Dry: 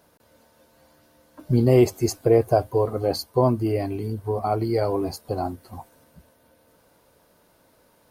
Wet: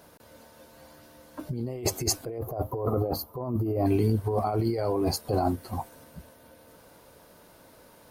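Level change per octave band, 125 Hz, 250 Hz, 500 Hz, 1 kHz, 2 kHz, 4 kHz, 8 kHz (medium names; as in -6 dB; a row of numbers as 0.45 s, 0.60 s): -4.5 dB, -5.0 dB, -8.0 dB, -4.0 dB, -6.0 dB, 0.0 dB, +4.5 dB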